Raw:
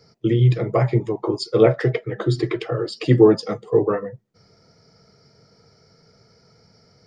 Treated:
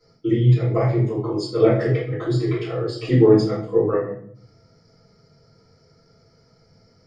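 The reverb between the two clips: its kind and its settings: simulated room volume 77 m³, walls mixed, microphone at 3 m; trim -14.5 dB

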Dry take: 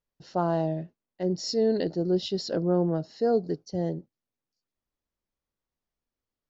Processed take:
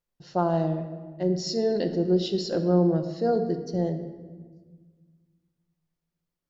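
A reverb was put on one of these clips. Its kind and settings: simulated room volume 1400 m³, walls mixed, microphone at 0.87 m

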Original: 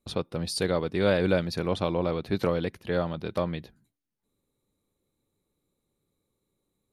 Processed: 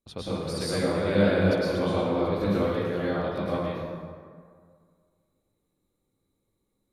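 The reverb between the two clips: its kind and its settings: plate-style reverb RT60 2 s, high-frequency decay 0.5×, pre-delay 95 ms, DRR -9.5 dB; trim -8.5 dB

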